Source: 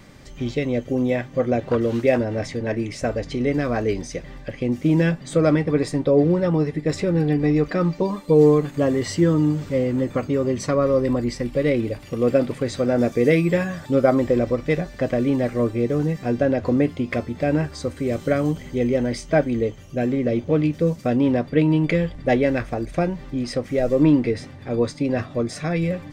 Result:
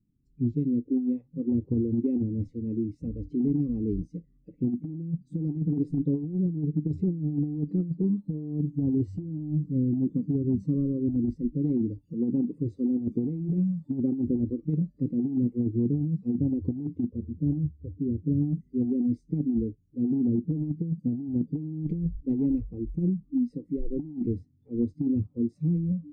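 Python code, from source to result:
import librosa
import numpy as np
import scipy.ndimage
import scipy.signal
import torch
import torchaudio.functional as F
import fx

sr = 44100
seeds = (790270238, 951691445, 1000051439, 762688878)

y = fx.gaussian_blur(x, sr, sigma=9.8, at=(17.05, 18.42))
y = scipy.signal.sosfilt(scipy.signal.cheby2(4, 40, 600.0, 'lowpass', fs=sr, output='sos'), y)
y = fx.noise_reduce_blind(y, sr, reduce_db=27)
y = fx.over_compress(y, sr, threshold_db=-25.0, ratio=-0.5)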